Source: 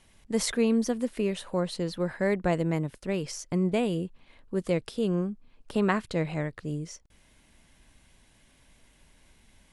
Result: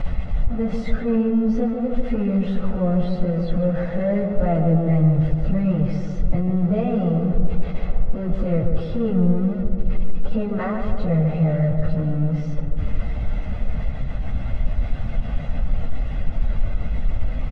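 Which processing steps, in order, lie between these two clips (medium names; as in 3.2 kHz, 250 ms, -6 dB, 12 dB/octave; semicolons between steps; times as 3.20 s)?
jump at every zero crossing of -28 dBFS; low-pass 2.9 kHz 12 dB/octave; bass shelf 95 Hz -4 dB; band-stop 390 Hz, Q 12; plain phase-vocoder stretch 1.8×; saturation -19 dBFS, distortion -21 dB; tilt EQ -4 dB/octave; comb 1.5 ms, depth 60%; tape echo 145 ms, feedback 84%, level -3.5 dB, low-pass 1.1 kHz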